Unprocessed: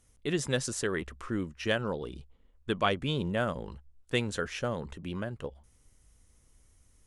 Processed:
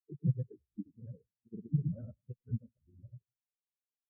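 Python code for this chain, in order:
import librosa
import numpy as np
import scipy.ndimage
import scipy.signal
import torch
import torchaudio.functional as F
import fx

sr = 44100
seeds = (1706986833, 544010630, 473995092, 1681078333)

y = fx.low_shelf(x, sr, hz=300.0, db=7.0)
y = fx.stretch_vocoder_free(y, sr, factor=0.58)
y = fx.granulator(y, sr, seeds[0], grain_ms=100.0, per_s=20.0, spray_ms=100.0, spread_st=0)
y = fx.echo_split(y, sr, split_hz=310.0, low_ms=152, high_ms=100, feedback_pct=52, wet_db=-13.0)
y = fx.spectral_expand(y, sr, expansion=4.0)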